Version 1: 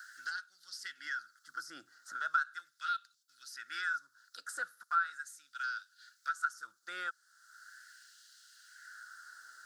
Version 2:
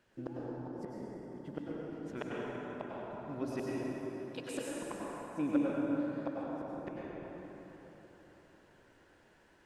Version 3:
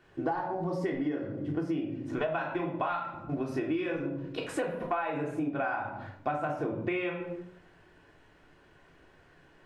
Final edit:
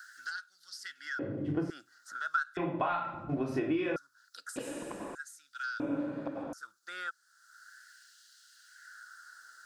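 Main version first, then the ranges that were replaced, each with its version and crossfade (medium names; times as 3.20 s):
1
1.19–1.70 s: from 3
2.57–3.96 s: from 3
4.56–5.15 s: from 2
5.80–6.53 s: from 2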